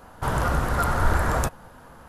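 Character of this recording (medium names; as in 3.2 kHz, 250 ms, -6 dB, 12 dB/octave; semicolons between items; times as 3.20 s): noise floor -49 dBFS; spectral tilt -5.5 dB/octave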